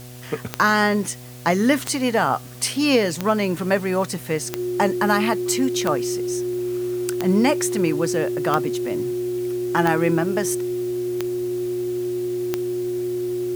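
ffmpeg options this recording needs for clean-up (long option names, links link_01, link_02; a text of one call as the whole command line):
ffmpeg -i in.wav -af "adeclick=threshold=4,bandreject=frequency=123.7:width_type=h:width=4,bandreject=frequency=247.4:width_type=h:width=4,bandreject=frequency=371.1:width_type=h:width=4,bandreject=frequency=494.8:width_type=h:width=4,bandreject=frequency=618.5:width_type=h:width=4,bandreject=frequency=742.2:width_type=h:width=4,bandreject=frequency=360:width=30,afwtdn=0.0056" out.wav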